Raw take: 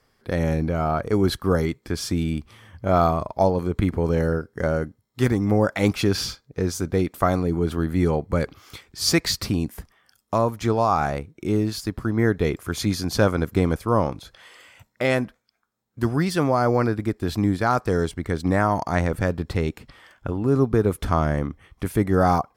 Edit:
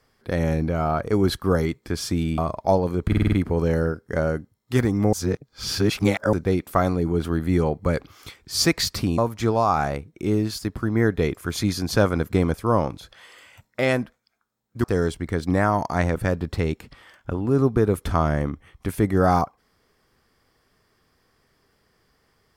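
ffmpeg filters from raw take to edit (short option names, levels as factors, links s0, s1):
-filter_complex "[0:a]asplit=11[s0][s1][s2][s3][s4][s5][s6][s7][s8][s9][s10];[s0]atrim=end=2.382[s11];[s1]atrim=start=3.098:end=3.842[s12];[s2]atrim=start=3.788:end=3.842[s13];[s3]atrim=start=3.788:end=3.842[s14];[s4]atrim=start=3.788:end=3.842[s15];[s5]atrim=start=3.788:end=3.842[s16];[s6]atrim=start=3.788:end=5.602[s17];[s7]atrim=start=5.598:end=6.802,asetpts=PTS-STARTPTS,areverse[s18];[s8]atrim=start=6.798:end=9.652[s19];[s9]atrim=start=10.398:end=16.062[s20];[s10]atrim=start=17.808[s21];[s11][s12]acrossfade=d=0.004:c1=hsin:c2=hsin[s22];[s22][s13]acrossfade=d=0.004:c1=hsin:c2=hsin[s23];[s23][s14]acrossfade=d=0.004:c1=hsin:c2=hsin[s24];[s24][s15]acrossfade=d=0.004:c1=hsin:c2=hsin[s25];[s25][s16]acrossfade=d=0.004:c1=hsin:c2=hsin[s26];[s26][s17]acrossfade=d=0.004:c1=hsin:c2=hsin[s27];[s27][s18]acrossfade=d=0.004:c1=hsin:c2=hsin[s28];[s28][s19]acrossfade=d=0.004:c1=hsin:c2=hsin[s29];[s29][s20]acrossfade=d=0.004:c1=hsin:c2=hsin[s30];[s30][s21]acrossfade=d=0.004:c1=hsin:c2=hsin"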